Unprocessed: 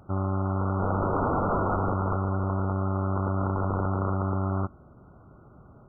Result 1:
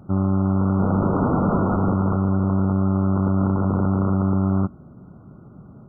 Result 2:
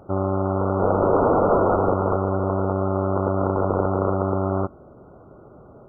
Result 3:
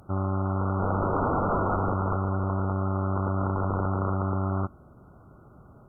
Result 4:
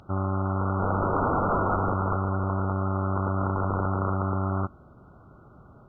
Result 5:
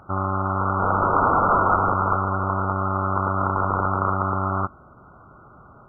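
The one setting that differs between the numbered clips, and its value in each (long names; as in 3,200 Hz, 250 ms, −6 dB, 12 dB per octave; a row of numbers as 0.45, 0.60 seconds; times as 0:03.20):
parametric band, centre frequency: 190, 490, 12,000, 3,600, 1,300 Hertz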